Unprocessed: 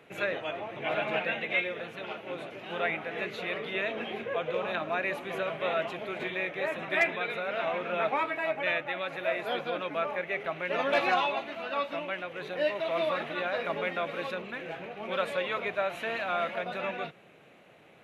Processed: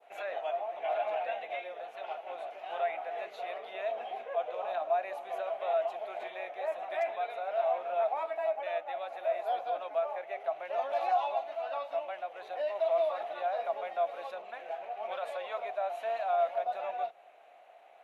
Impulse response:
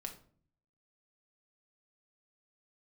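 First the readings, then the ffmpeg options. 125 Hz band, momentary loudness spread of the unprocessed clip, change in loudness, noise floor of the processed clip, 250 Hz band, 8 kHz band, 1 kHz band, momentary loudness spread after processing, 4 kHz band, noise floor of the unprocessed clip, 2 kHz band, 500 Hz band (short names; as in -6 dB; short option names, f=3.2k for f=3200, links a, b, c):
under -30 dB, 8 LU, -3.0 dB, -56 dBFS, under -20 dB, n/a, +1.0 dB, 10 LU, -12.0 dB, -56 dBFS, -13.0 dB, -1.0 dB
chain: -af "adynamicequalizer=threshold=0.00562:dfrequency=2000:dqfactor=0.7:tfrequency=2000:tqfactor=0.7:attack=5:release=100:ratio=0.375:range=4:mode=cutabove:tftype=bell,alimiter=level_in=0.5dB:limit=-24dB:level=0:latency=1:release=36,volume=-0.5dB,highpass=f=710:t=q:w=6.8,volume=-7.5dB"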